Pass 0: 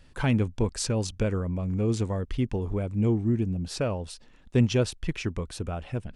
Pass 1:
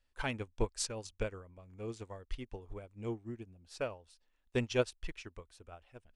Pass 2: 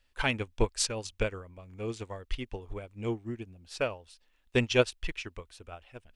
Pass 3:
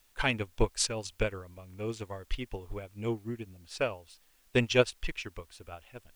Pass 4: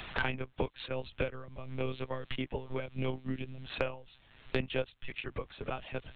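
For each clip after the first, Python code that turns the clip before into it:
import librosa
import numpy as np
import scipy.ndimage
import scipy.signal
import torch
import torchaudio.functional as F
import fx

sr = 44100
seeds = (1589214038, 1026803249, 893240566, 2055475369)

y1 = fx.peak_eq(x, sr, hz=160.0, db=-14.5, octaves=2.0)
y1 = fx.upward_expand(y1, sr, threshold_db=-40.0, expansion=2.5)
y1 = F.gain(torch.from_numpy(y1), 1.5).numpy()
y2 = fx.peak_eq(y1, sr, hz=2800.0, db=5.0, octaves=1.3)
y2 = F.gain(torch.from_numpy(y2), 6.0).numpy()
y3 = fx.dmg_noise_colour(y2, sr, seeds[0], colour='white', level_db=-68.0)
y4 = fx.notch_comb(y3, sr, f0_hz=340.0)
y4 = fx.lpc_monotone(y4, sr, seeds[1], pitch_hz=130.0, order=16)
y4 = fx.band_squash(y4, sr, depth_pct=100)
y4 = F.gain(torch.from_numpy(y4), -1.5).numpy()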